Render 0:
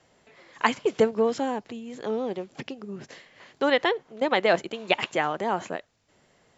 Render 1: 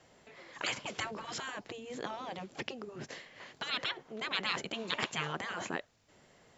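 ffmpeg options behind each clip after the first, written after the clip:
-af "afftfilt=real='re*lt(hypot(re,im),0.112)':imag='im*lt(hypot(re,im),0.112)':win_size=1024:overlap=0.75"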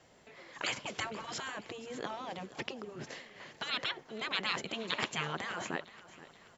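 -af "aecho=1:1:477|954|1431|1908:0.133|0.0653|0.032|0.0157"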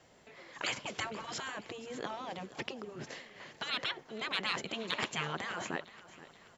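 -af "asoftclip=type=tanh:threshold=-16dB"

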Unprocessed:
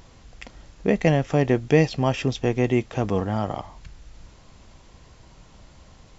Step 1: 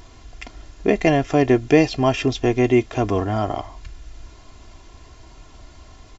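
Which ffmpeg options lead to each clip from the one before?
-af "aecho=1:1:2.9:0.62,volume=3dB"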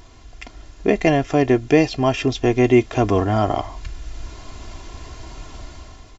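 -af "dynaudnorm=f=180:g=7:m=9.5dB,volume=-1dB"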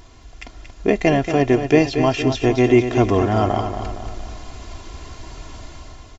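-af "aecho=1:1:231|462|693|924|1155|1386:0.376|0.188|0.094|0.047|0.0235|0.0117"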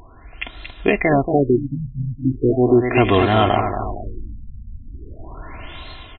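-af "crystalizer=i=8:c=0,alimiter=level_in=2dB:limit=-1dB:release=50:level=0:latency=1,afftfilt=real='re*lt(b*sr/1024,220*pow(4200/220,0.5+0.5*sin(2*PI*0.38*pts/sr)))':imag='im*lt(b*sr/1024,220*pow(4200/220,0.5+0.5*sin(2*PI*0.38*pts/sr)))':win_size=1024:overlap=0.75,volume=-1dB"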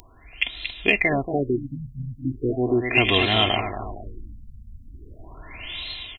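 -af "aexciter=amount=7.5:drive=2.2:freq=2.1k,volume=-7.5dB"

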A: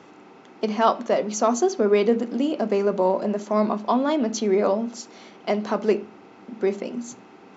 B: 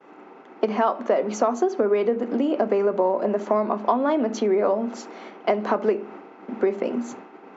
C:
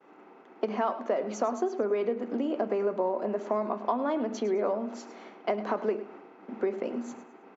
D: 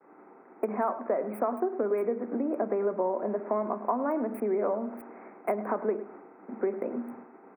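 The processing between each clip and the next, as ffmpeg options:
-filter_complex "[0:a]agate=range=-33dB:threshold=-42dB:ratio=3:detection=peak,acompressor=threshold=-25dB:ratio=10,acrossover=split=230 2400:gain=0.141 1 0.178[a][b][c];[a][b][c]amix=inputs=3:normalize=0,volume=9dB"
-af "aecho=1:1:105|210|315:0.2|0.0619|0.0192,volume=-7.5dB"
-filter_complex "[0:a]acrossover=split=140|1100|2300[a][b][c][d];[d]acrusher=bits=6:mix=0:aa=0.000001[e];[a][b][c][e]amix=inputs=4:normalize=0,asuperstop=centerf=4800:order=20:qfactor=0.79"

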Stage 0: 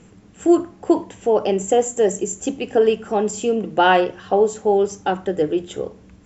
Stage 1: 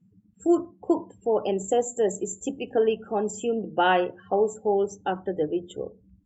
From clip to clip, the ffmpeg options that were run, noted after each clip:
-af "afftdn=nr=30:nf=-35,volume=-6.5dB"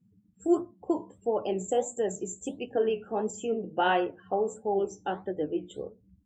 -af "flanger=delay=8.1:depth=8.7:regen=61:speed=1.5:shape=sinusoidal"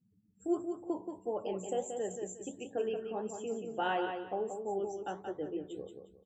-af "aecho=1:1:179|358|537:0.473|0.128|0.0345,volume=-8dB"

